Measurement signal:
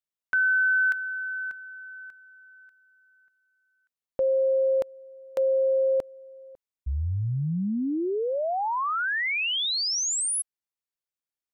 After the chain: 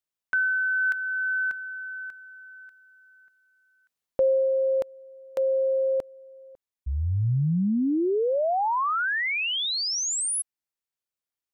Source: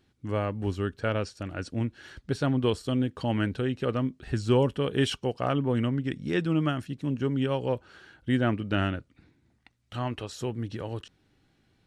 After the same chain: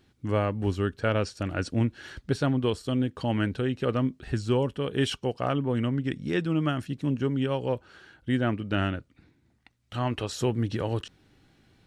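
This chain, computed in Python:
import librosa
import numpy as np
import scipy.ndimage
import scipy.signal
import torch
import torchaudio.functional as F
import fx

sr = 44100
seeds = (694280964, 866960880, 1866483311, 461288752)

y = fx.rider(x, sr, range_db=5, speed_s=0.5)
y = F.gain(torch.from_numpy(y), 1.0).numpy()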